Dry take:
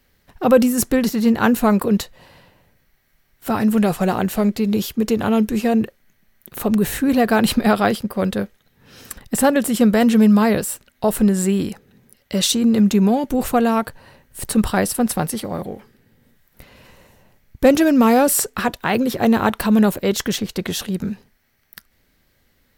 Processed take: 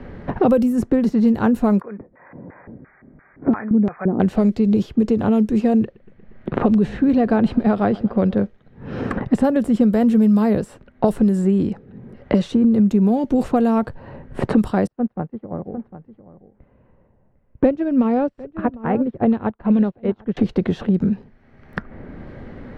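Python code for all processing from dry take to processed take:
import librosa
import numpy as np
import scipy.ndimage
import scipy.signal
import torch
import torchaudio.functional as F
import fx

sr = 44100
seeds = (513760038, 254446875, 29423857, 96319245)

y = fx.chain(x, sr, fx.brickwall_lowpass(high_hz=2500.0),
    fx.filter_lfo_bandpass(shape='square', hz=2.9, low_hz=270.0, high_hz=1600.0, q=1.9), at=(1.81, 4.2))
y = fx.chain(y, sr, fx.lowpass(hz=4000.0, slope=12),
    fx.echo_feedback(ms=118, feedback_pct=54, wet_db=-23), at=(5.83, 8.43))
y = fx.chain(y, sr, fx.lowpass(hz=2500.0, slope=12),
    fx.echo_single(ms=752, db=-13.0),
    fx.upward_expand(threshold_db=-33.0, expansion=2.5), at=(14.87, 20.37))
y = fx.env_lowpass(y, sr, base_hz=1900.0, full_db=-11.0)
y = fx.tilt_shelf(y, sr, db=8.0, hz=1100.0)
y = fx.band_squash(y, sr, depth_pct=100)
y = F.gain(torch.from_numpy(y), -6.0).numpy()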